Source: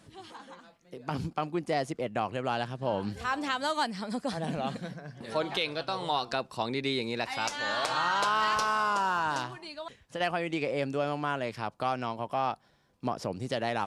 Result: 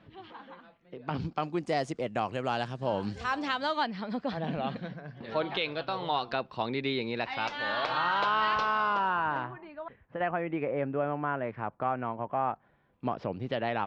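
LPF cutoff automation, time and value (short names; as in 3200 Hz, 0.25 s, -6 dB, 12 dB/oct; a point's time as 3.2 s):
LPF 24 dB/oct
0.98 s 3300 Hz
1.65 s 8300 Hz
2.96 s 8300 Hz
3.92 s 3800 Hz
8.87 s 3800 Hz
9.54 s 2000 Hz
12.51 s 2000 Hz
13.1 s 3300 Hz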